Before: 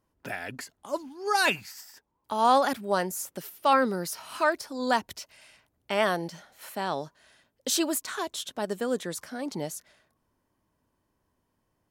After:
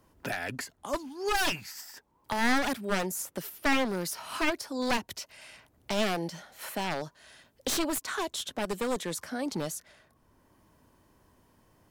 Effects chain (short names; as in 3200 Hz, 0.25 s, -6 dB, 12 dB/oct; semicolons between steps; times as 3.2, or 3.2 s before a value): one-sided fold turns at -26 dBFS; three-band squash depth 40%